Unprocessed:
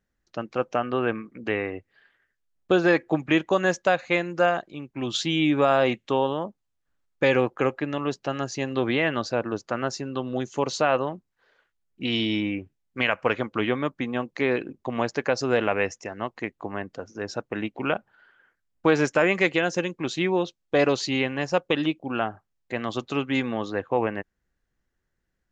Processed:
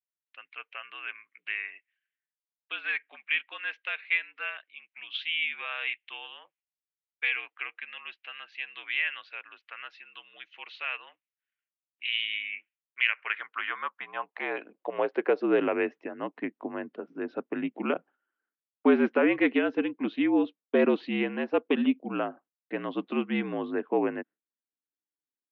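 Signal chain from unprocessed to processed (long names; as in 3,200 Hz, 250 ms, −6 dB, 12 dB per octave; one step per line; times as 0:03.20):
noise gate with hold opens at −46 dBFS
high-pass filter sweep 2,400 Hz → 310 Hz, 0:13.01–0:15.67
single-sideband voice off tune −54 Hz 260–3,300 Hz
level −5.5 dB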